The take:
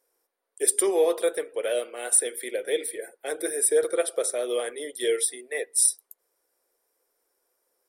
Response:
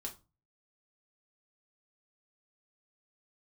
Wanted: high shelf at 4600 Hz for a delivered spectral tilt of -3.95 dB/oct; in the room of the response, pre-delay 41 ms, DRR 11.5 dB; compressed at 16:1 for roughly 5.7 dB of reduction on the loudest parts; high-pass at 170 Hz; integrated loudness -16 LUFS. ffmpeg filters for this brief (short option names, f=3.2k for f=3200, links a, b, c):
-filter_complex "[0:a]highpass=170,highshelf=f=4.6k:g=-8.5,acompressor=threshold=-23dB:ratio=16,asplit=2[a][b];[1:a]atrim=start_sample=2205,adelay=41[c];[b][c]afir=irnorm=-1:irlink=0,volume=-9.5dB[d];[a][d]amix=inputs=2:normalize=0,volume=14dB"